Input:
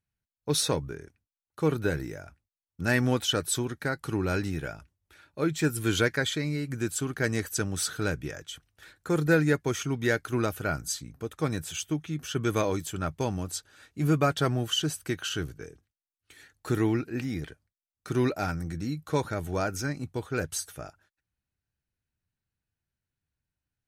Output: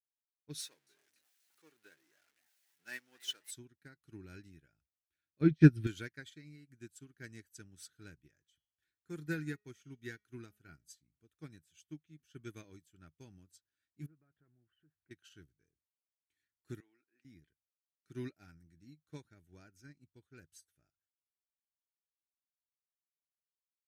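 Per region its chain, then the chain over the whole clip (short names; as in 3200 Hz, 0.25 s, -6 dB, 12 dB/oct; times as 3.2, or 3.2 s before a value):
0.6–3.51 zero-crossing step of -30 dBFS + HPF 560 Hz + frequency-shifting echo 0.267 s, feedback 61%, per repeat +130 Hz, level -13 dB
5.41–5.87 polynomial smoothing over 15 samples + low shelf 370 Hz +11.5 dB
8.38–10.84 notch 580 Hz, Q 5.2 + de-hum 209.1 Hz, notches 31
14.06–15.11 LPF 1800 Hz 24 dB/oct + compressor 2:1, threshold -42 dBFS
16.8–17.25 HPF 650 Hz + high shelf 2700 Hz -7 dB
whole clip: band shelf 750 Hz -10.5 dB; upward expander 2.5:1, over -37 dBFS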